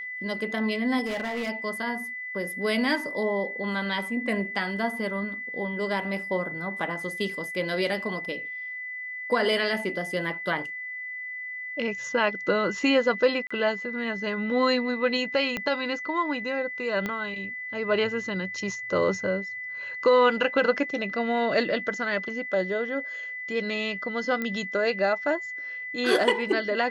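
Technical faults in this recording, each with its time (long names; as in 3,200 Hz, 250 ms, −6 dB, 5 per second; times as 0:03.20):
whistle 2,000 Hz −33 dBFS
0:01.05–0:01.50: clipping −26.5 dBFS
0:13.47–0:13.51: drop-out 35 ms
0:15.57: click −15 dBFS
0:17.06: click −16 dBFS
0:24.42: click −17 dBFS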